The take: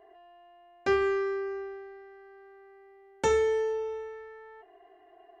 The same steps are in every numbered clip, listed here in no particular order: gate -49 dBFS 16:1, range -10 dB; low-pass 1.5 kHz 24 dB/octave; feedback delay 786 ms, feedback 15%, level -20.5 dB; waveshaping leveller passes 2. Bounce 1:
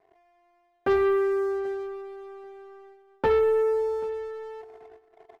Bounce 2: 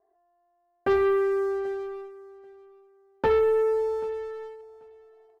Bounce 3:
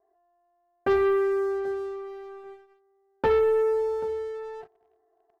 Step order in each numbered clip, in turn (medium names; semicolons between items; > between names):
low-pass > waveshaping leveller > feedback delay > gate; low-pass > gate > waveshaping leveller > feedback delay; feedback delay > gate > low-pass > waveshaping leveller